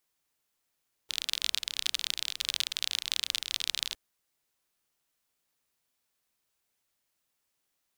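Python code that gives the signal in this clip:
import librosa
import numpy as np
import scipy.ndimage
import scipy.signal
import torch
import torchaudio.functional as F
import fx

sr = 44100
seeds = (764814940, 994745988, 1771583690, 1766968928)

y = fx.rain(sr, seeds[0], length_s=2.86, drops_per_s=35.0, hz=3600.0, bed_db=-27.0)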